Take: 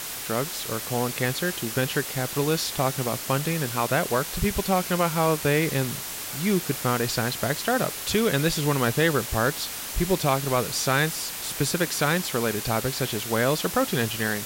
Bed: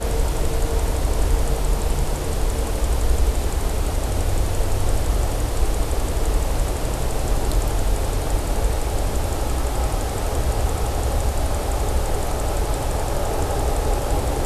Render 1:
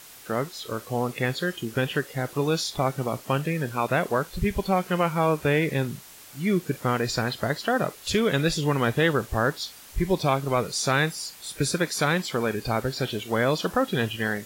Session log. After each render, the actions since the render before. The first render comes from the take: noise print and reduce 13 dB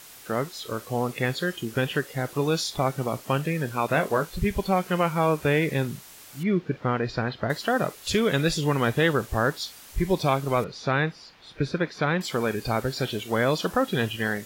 3.87–4.35 doubler 19 ms -8 dB; 6.43–7.5 air absorption 250 m; 10.64–12.21 air absorption 270 m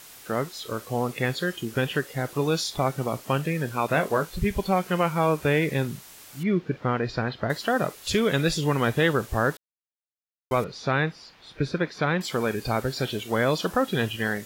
9.57–10.51 mute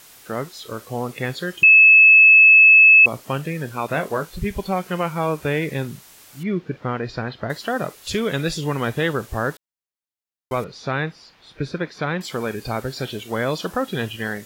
1.63–3.06 bleep 2600 Hz -6.5 dBFS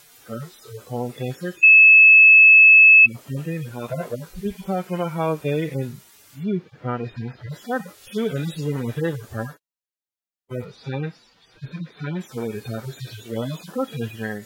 median-filter separation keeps harmonic; notch 1100 Hz, Q 24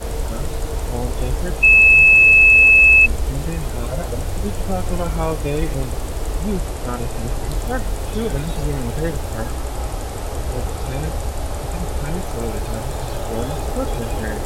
add bed -3 dB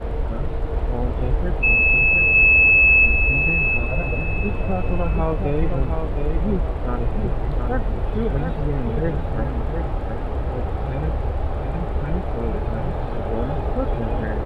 air absorption 500 m; feedback echo 0.715 s, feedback 30%, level -6 dB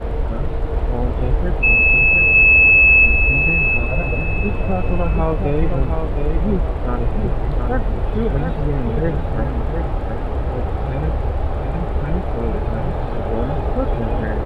gain +3 dB; limiter -3 dBFS, peak gain reduction 1.5 dB

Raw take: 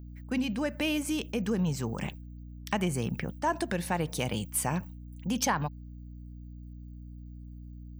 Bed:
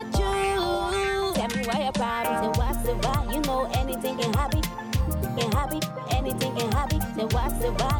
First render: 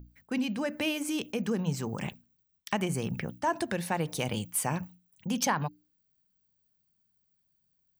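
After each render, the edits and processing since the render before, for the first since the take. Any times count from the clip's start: notches 60/120/180/240/300 Hz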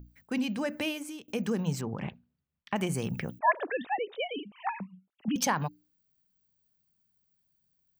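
0.75–1.28 fade out, to -24 dB; 1.81–2.76 air absorption 330 m; 3.39–5.36 sine-wave speech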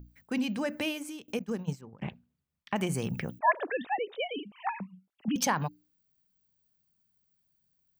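1.39–2.02 expander -25 dBFS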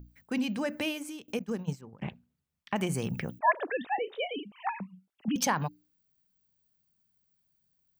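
3.9–4.35 doubler 35 ms -12.5 dB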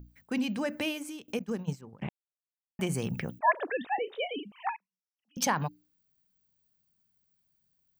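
2.09–2.79 mute; 4.76–5.37 band-pass 5600 Hz, Q 11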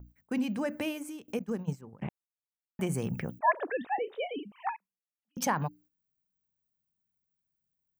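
gate -56 dBFS, range -9 dB; bell 3900 Hz -8 dB 1.5 oct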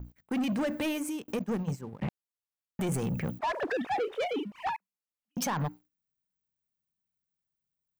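limiter -25 dBFS, peak gain reduction 11 dB; sample leveller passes 2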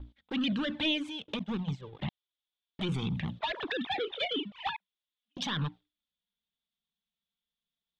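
synth low-pass 3500 Hz, resonance Q 8.9; envelope flanger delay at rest 4.4 ms, full sweep at -23 dBFS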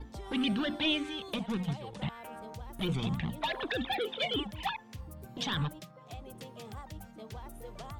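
add bed -20 dB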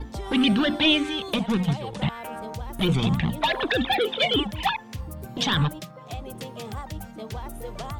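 gain +10 dB

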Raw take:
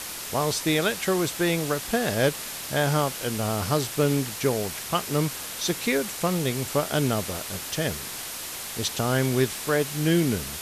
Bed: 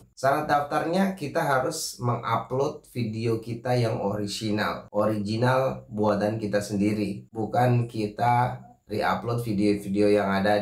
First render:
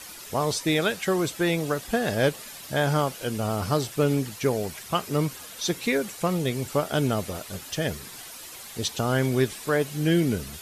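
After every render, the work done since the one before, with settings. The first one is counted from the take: denoiser 10 dB, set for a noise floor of -36 dBFS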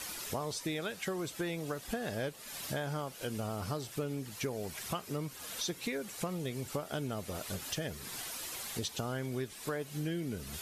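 compressor 5:1, threshold -35 dBFS, peak gain reduction 16 dB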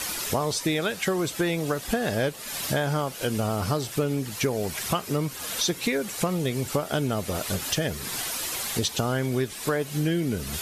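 gain +11 dB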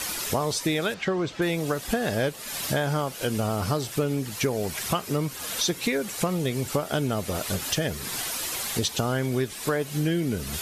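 0.94–1.42 air absorption 150 m

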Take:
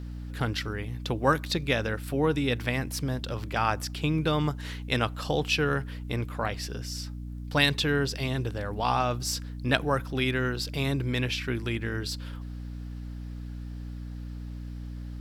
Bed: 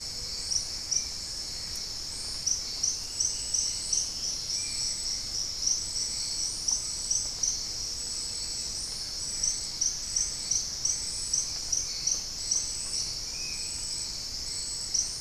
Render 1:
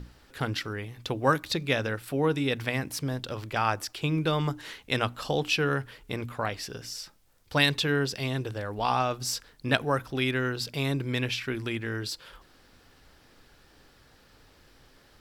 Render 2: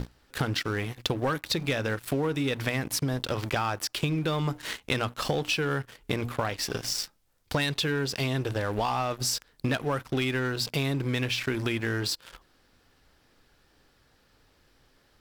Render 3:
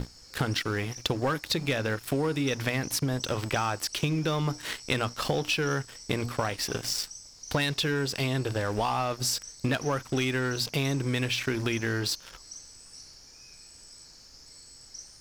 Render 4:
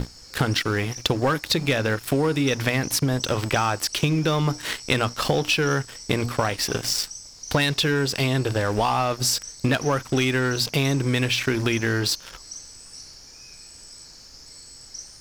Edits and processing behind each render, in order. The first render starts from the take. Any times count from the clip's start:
notches 60/120/180/240/300 Hz
sample leveller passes 3; compressor 10:1, threshold -25 dBFS, peak gain reduction 15 dB
add bed -16.5 dB
gain +6 dB

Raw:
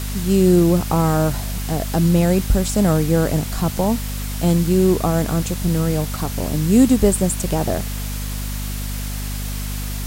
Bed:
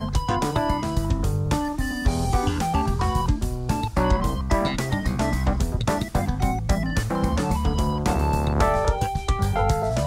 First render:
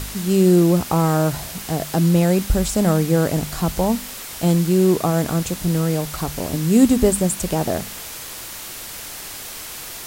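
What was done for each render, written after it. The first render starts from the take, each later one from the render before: de-hum 50 Hz, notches 5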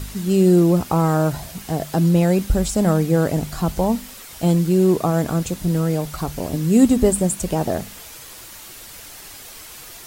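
denoiser 7 dB, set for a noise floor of -34 dBFS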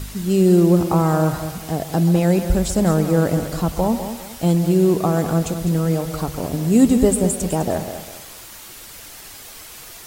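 narrowing echo 0.132 s, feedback 47%, band-pass 850 Hz, level -11.5 dB; lo-fi delay 0.203 s, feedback 35%, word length 7-bit, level -10 dB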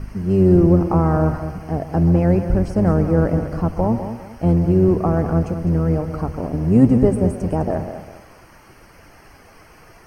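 octaver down 1 oct, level -4 dB; running mean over 12 samples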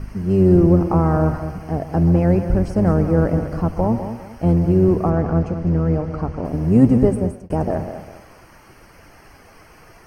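5.1–6.45 air absorption 86 m; 6.97–7.5 fade out equal-power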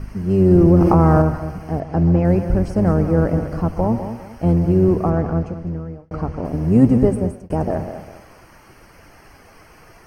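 0.51–1.22 fast leveller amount 70%; 1.8–2.25 air absorption 75 m; 5.16–6.11 fade out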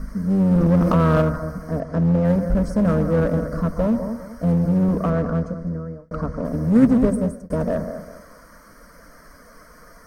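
fixed phaser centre 540 Hz, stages 8; in parallel at -9 dB: wavefolder -20 dBFS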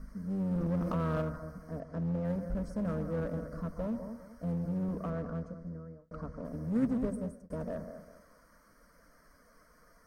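gain -15.5 dB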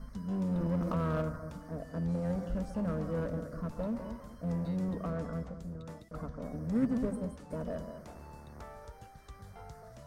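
add bed -28 dB

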